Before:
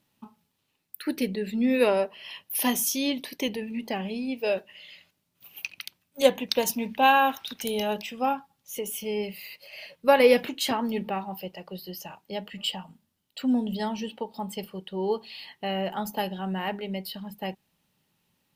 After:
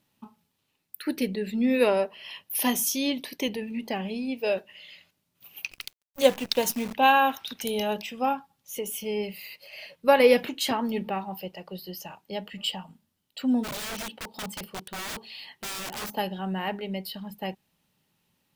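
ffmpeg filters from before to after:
-filter_complex "[0:a]asettb=1/sr,asplit=3[a][b][c];[a]atrim=end=5.714[d];[b]atrim=start=5.71:end=6.94,asetpts=PTS-STARTPTS,afade=t=in:d=0.004:c=qsin,afade=t=out:st=1.226:d=0.004:c=qsin,acrusher=bits=7:dc=4:mix=0:aa=0.000001[e];[c]atrim=start=6.936[f];[d][e]acrossfade=d=0.004:c1=hsin:c2=qsin[g];[g][f]acrossfade=d=0.004:c1=qsin:c2=hsin,asplit=3[h][i][j];[h]afade=t=out:st=13.63:d=0.02[k];[i]aeval=exprs='(mod(31.6*val(0)+1,2)-1)/31.6':c=same,afade=t=in:st=13.63:d=0.02,afade=t=out:st=16.11:d=0.02[l];[j]afade=t=in:st=16.11:d=0.02[m];[k][l][m]amix=inputs=3:normalize=0"

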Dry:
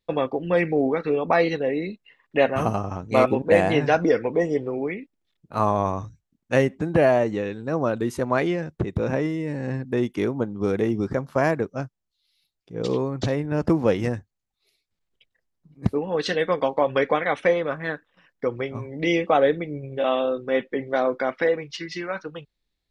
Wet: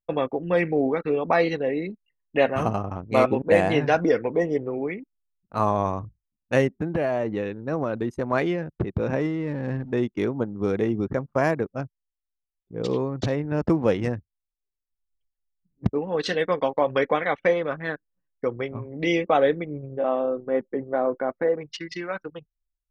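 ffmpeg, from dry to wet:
-filter_complex "[0:a]asettb=1/sr,asplit=3[a][b][c];[a]atrim=end=6.774[d];[b]atrim=start=6.77:end=8.33,asetpts=PTS-STARTPTS,afade=t=in:d=0.004:c=qsin,afade=t=out:st=1.556:d=0.004:c=qsin,acompressor=threshold=-19dB:ratio=6:attack=3.2:release=140:knee=1:detection=peak[e];[c]atrim=start=8.326[f];[d][e]acrossfade=d=0.004:c1=hsin:c2=qsin[g];[g][f]acrossfade=d=0.004:c1=qsin:c2=hsin,asettb=1/sr,asplit=3[h][i][j];[h]atrim=end=9.204[k];[i]atrim=start=9.2:end=9.92,asetpts=PTS-STARTPTS,afade=t=in:d=0.004:c=qsin,afade=t=out:st=0.716:d=0.004:c=qsin,aeval=exprs='val(0)+0.5*0.0106*sgn(val(0))':c=same[l];[j]atrim=start=9.916[m];[k][l]acrossfade=d=0.004:c1=hsin:c2=qsin[n];[n][m]acrossfade=d=0.004:c1=qsin:c2=hsin,asettb=1/sr,asplit=3[o][p][q];[o]atrim=end=19.914[r];[p]atrim=start=19.91:end=21.61,asetpts=PTS-STARTPTS,afade=t=in:d=0.004:c=qsin,afade=t=out:st=1.696:d=0.004:c=qsin,lowpass=1.2k[s];[q]atrim=start=21.606[t];[r][s]acrossfade=d=0.004:c1=hsin:c2=qsin[u];[u][t]acrossfade=d=0.004:c1=qsin:c2=hsin,anlmdn=3.98,volume=-1dB"

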